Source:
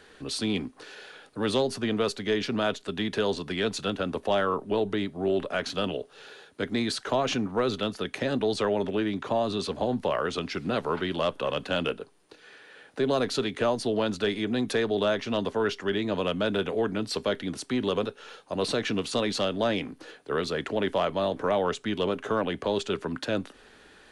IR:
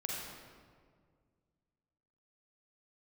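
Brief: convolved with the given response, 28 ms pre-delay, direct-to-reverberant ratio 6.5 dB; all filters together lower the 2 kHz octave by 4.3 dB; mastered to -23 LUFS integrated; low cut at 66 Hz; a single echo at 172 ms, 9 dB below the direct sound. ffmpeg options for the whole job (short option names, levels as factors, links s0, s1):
-filter_complex "[0:a]highpass=66,equalizer=f=2000:t=o:g=-6,aecho=1:1:172:0.355,asplit=2[s0][s1];[1:a]atrim=start_sample=2205,adelay=28[s2];[s1][s2]afir=irnorm=-1:irlink=0,volume=0.376[s3];[s0][s3]amix=inputs=2:normalize=0,volume=1.68"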